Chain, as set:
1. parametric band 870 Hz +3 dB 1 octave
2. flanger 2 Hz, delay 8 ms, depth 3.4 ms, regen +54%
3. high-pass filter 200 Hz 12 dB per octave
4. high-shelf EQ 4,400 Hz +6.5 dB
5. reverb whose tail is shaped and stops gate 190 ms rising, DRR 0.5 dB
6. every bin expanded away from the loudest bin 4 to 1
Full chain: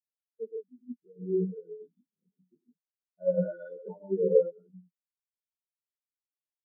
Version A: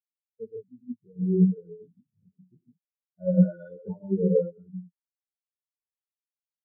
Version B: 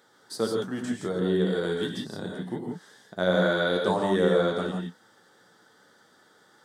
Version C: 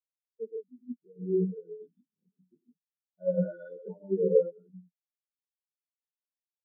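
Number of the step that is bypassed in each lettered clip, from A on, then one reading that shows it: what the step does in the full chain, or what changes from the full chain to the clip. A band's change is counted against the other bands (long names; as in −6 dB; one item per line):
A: 3, change in crest factor −3.5 dB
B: 6, change in crest factor −6.0 dB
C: 1, change in momentary loudness spread −2 LU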